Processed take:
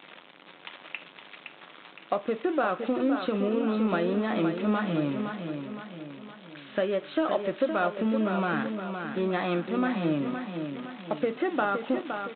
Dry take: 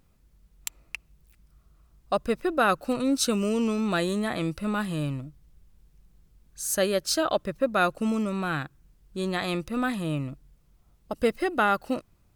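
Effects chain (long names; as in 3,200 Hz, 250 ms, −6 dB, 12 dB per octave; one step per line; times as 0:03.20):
spike at every zero crossing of −20.5 dBFS
high-pass filter 200 Hz 24 dB per octave
high-shelf EQ 2,300 Hz −12 dB
downward compressor, threshold −28 dBFS, peak gain reduction 9.5 dB
in parallel at −11 dB: soft clipping −26.5 dBFS, distortion −16 dB
on the sum: repeating echo 515 ms, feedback 46%, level −7 dB
on a send at −8.5 dB: convolution reverb, pre-delay 3 ms
on the sum: downsampling to 8,000 Hz
level +3 dB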